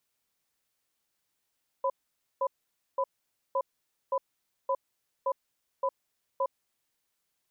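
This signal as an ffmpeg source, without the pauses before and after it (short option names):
-f lavfi -i "aevalsrc='0.0422*(sin(2*PI*542*t)+sin(2*PI*1000*t))*clip(min(mod(t,0.57),0.06-mod(t,0.57))/0.005,0,1)':d=4.76:s=44100"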